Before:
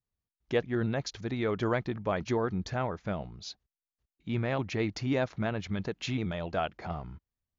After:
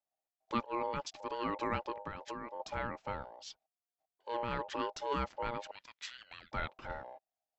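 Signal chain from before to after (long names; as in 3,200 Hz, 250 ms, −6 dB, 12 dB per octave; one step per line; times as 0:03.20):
0:02.02–0:02.60: downward compressor 12 to 1, threshold −33 dBFS, peak gain reduction 9.5 dB
0:05.71–0:06.52: Bessel high-pass filter 1,400 Hz, order 6
ring modulation 710 Hz
level −3.5 dB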